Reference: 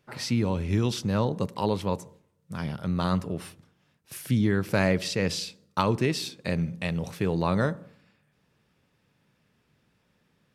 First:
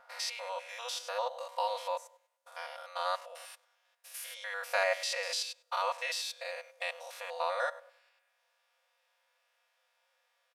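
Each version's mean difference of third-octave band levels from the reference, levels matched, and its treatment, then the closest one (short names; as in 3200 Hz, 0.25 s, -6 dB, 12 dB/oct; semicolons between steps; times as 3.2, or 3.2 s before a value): 16.5 dB: stepped spectrum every 0.1 s; brick-wall FIR high-pass 500 Hz; comb 4.2 ms, depth 84%; gain -2.5 dB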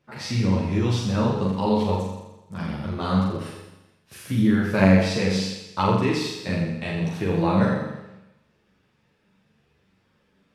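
6.5 dB: high shelf 8100 Hz -11 dB; on a send: flutter echo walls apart 7.2 m, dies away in 0.99 s; on the sum: ensemble effect; gain +3.5 dB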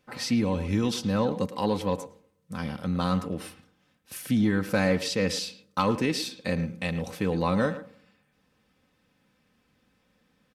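2.5 dB: comb 3.9 ms, depth 52%; soft clip -11 dBFS, distortion -23 dB; speakerphone echo 0.11 s, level -12 dB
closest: third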